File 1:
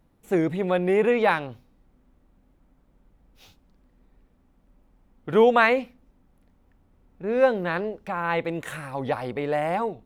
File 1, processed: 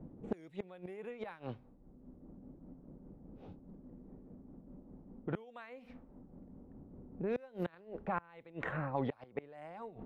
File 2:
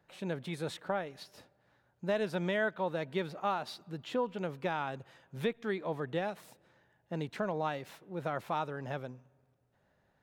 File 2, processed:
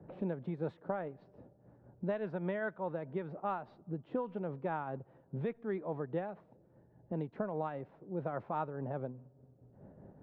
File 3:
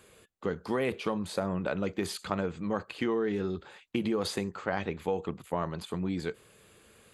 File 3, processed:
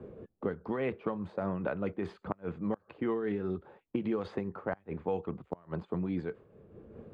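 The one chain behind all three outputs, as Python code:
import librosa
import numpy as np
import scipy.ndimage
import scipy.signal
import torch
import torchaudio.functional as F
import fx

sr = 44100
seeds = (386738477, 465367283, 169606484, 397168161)

y = fx.env_lowpass(x, sr, base_hz=400.0, full_db=-19.5)
y = fx.tremolo_shape(y, sr, shape='triangle', hz=4.9, depth_pct=50)
y = fx.rider(y, sr, range_db=4, speed_s=2.0)
y = fx.gate_flip(y, sr, shuts_db=-19.0, range_db=-29)
y = fx.band_squash(y, sr, depth_pct=70)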